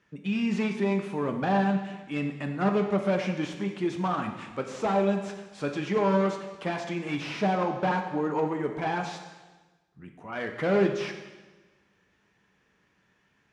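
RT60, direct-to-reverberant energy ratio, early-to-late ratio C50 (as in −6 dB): 1.2 s, 4.0 dB, 7.0 dB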